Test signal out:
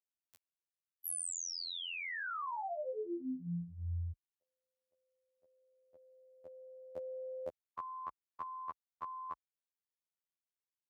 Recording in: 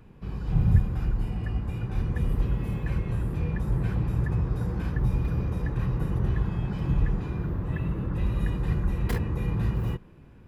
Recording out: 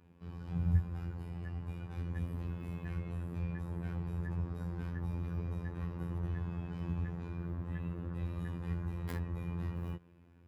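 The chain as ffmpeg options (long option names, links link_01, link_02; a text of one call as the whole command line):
ffmpeg -i in.wav -af "afftfilt=real='hypot(re,im)*cos(PI*b)':imag='0':win_size=2048:overlap=0.75,highpass=frequency=47:width=0.5412,highpass=frequency=47:width=1.3066,adynamicequalizer=threshold=0.00501:dfrequency=2000:dqfactor=0.7:tfrequency=2000:tqfactor=0.7:attack=5:release=100:ratio=0.375:range=2.5:mode=cutabove:tftype=highshelf,volume=-6.5dB" out.wav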